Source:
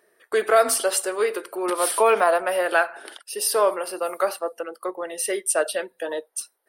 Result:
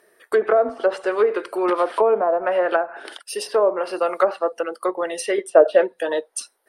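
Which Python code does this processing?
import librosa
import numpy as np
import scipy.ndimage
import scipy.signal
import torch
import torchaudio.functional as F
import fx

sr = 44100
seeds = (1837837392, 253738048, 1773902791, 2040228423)

p1 = fx.env_lowpass_down(x, sr, base_hz=650.0, full_db=-16.0)
p2 = fx.peak_eq(p1, sr, hz=510.0, db=10.0, octaves=2.4, at=(5.38, 5.94))
p3 = fx.rider(p2, sr, range_db=4, speed_s=0.5)
p4 = p2 + (p3 * 10.0 ** (1.0 / 20.0))
y = p4 * 10.0 ** (-2.5 / 20.0)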